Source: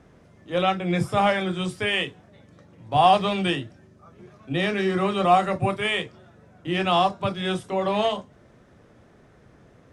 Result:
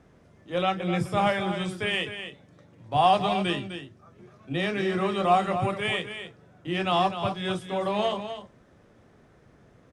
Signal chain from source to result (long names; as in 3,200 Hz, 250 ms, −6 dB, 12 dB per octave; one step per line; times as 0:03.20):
single-tap delay 254 ms −9.5 dB
level −3.5 dB